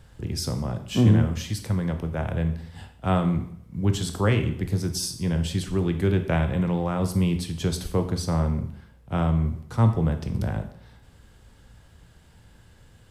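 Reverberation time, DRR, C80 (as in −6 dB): 0.65 s, 6.5 dB, 13.5 dB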